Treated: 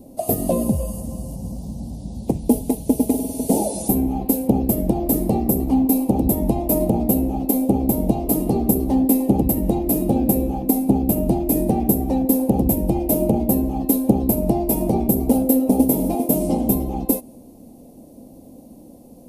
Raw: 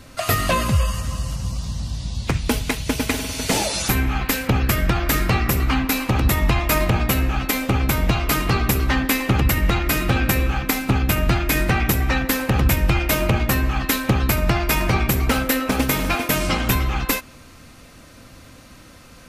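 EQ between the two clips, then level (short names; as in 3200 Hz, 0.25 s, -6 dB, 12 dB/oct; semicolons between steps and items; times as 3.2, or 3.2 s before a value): dynamic EQ 9600 Hz, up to +5 dB, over -44 dBFS, Q 2; EQ curve 120 Hz 0 dB, 220 Hz +15 dB, 810 Hz +8 dB, 1400 Hz -29 dB, 2800 Hz -16 dB, 7100 Hz -5 dB, 11000 Hz +8 dB; -7.0 dB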